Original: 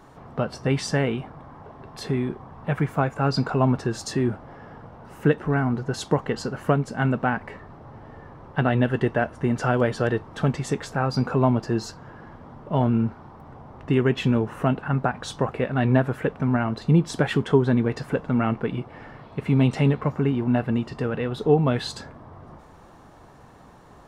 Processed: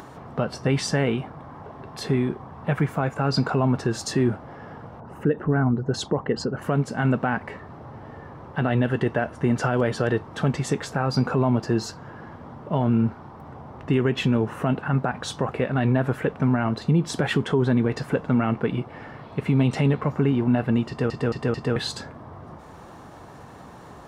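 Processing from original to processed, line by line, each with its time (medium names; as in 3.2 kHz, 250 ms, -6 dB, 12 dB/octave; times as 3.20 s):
5.00–6.62 s: resonances exaggerated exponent 1.5
20.88 s: stutter in place 0.22 s, 4 plays
whole clip: peak limiter -14 dBFS; upward compressor, threshold -39 dBFS; high-pass 61 Hz; trim +2.5 dB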